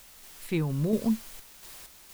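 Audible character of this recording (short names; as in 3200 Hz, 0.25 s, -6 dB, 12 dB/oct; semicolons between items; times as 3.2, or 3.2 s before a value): a quantiser's noise floor 8-bit, dither triangular; random-step tremolo 4.3 Hz, depth 55%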